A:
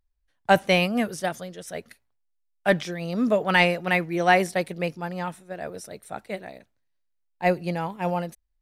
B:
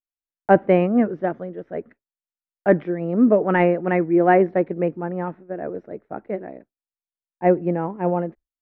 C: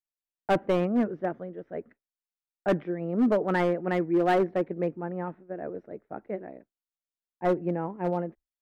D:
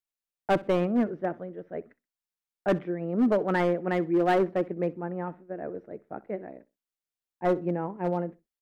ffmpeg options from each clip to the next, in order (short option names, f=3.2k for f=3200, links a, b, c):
-af "lowpass=f=1.9k:w=0.5412,lowpass=f=1.9k:w=1.3066,agate=range=-33dB:threshold=-43dB:ratio=3:detection=peak,equalizer=f=330:w=0.9:g=13.5,volume=-2dB"
-af "volume=11.5dB,asoftclip=hard,volume=-11.5dB,volume=-6.5dB"
-af "aecho=1:1:63|126:0.0891|0.0214"